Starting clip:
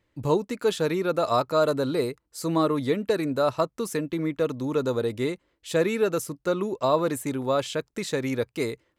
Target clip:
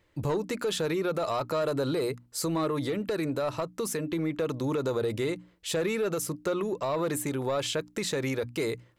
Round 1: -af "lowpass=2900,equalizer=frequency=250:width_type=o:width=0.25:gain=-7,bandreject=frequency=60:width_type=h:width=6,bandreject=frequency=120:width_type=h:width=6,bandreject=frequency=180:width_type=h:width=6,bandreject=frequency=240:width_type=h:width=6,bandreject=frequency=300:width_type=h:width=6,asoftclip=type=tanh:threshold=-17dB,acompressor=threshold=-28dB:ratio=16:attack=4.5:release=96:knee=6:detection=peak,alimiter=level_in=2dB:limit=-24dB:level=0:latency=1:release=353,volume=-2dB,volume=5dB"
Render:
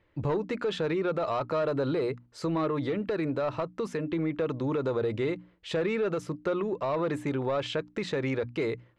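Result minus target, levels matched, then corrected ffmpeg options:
4,000 Hz band −4.5 dB
-af "equalizer=frequency=250:width_type=o:width=0.25:gain=-7,bandreject=frequency=60:width_type=h:width=6,bandreject=frequency=120:width_type=h:width=6,bandreject=frequency=180:width_type=h:width=6,bandreject=frequency=240:width_type=h:width=6,bandreject=frequency=300:width_type=h:width=6,asoftclip=type=tanh:threshold=-17dB,acompressor=threshold=-28dB:ratio=16:attack=4.5:release=96:knee=6:detection=peak,alimiter=level_in=2dB:limit=-24dB:level=0:latency=1:release=353,volume=-2dB,volume=5dB"

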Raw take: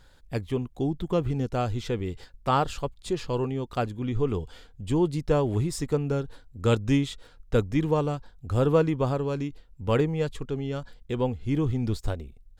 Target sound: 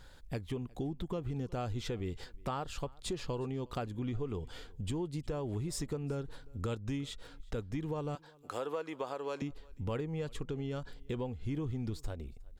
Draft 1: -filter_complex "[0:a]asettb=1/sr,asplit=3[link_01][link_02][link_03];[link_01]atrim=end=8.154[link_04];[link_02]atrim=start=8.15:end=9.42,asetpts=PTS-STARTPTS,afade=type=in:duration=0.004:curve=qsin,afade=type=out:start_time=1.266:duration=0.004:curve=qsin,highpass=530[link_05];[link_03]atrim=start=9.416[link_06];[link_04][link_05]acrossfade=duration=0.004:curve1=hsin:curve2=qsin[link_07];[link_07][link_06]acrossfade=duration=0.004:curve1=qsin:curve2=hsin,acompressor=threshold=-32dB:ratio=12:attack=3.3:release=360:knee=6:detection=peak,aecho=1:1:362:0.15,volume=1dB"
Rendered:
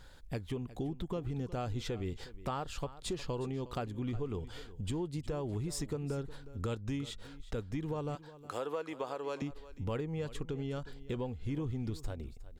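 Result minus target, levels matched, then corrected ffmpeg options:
echo-to-direct +8.5 dB
-filter_complex "[0:a]asettb=1/sr,asplit=3[link_01][link_02][link_03];[link_01]atrim=end=8.154[link_04];[link_02]atrim=start=8.15:end=9.42,asetpts=PTS-STARTPTS,afade=type=in:duration=0.004:curve=qsin,afade=type=out:start_time=1.266:duration=0.004:curve=qsin,highpass=530[link_05];[link_03]atrim=start=9.416[link_06];[link_04][link_05]acrossfade=duration=0.004:curve1=hsin:curve2=qsin[link_07];[link_07][link_06]acrossfade=duration=0.004:curve1=qsin:curve2=hsin,acompressor=threshold=-32dB:ratio=12:attack=3.3:release=360:knee=6:detection=peak,aecho=1:1:362:0.0562,volume=1dB"

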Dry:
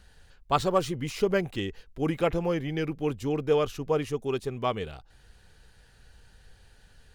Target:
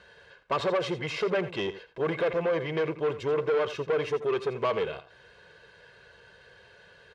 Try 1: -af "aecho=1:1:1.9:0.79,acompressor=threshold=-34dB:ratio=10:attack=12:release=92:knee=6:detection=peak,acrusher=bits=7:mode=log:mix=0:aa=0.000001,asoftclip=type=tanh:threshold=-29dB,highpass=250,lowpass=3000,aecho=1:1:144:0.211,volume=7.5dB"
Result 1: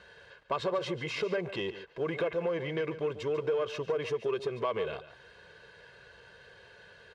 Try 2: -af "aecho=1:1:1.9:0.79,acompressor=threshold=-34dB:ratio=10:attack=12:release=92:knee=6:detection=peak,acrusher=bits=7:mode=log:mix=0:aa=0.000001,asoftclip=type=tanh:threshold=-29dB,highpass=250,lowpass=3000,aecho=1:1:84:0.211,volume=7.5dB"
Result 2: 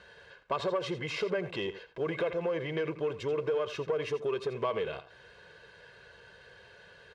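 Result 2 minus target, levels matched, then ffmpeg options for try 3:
downward compressor: peak gain reduction +10 dB
-af "aecho=1:1:1.9:0.79,acompressor=threshold=-23dB:ratio=10:attack=12:release=92:knee=6:detection=peak,acrusher=bits=7:mode=log:mix=0:aa=0.000001,asoftclip=type=tanh:threshold=-29dB,highpass=250,lowpass=3000,aecho=1:1:84:0.211,volume=7.5dB"

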